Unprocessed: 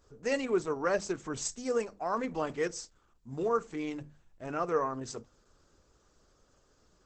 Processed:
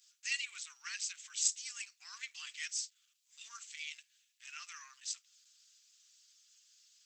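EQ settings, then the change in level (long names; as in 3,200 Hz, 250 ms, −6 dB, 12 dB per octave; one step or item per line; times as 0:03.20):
inverse Chebyshev high-pass filter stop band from 600 Hz, stop band 70 dB
dynamic equaliser 5,700 Hz, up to −5 dB, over −55 dBFS, Q 0.86
+9.0 dB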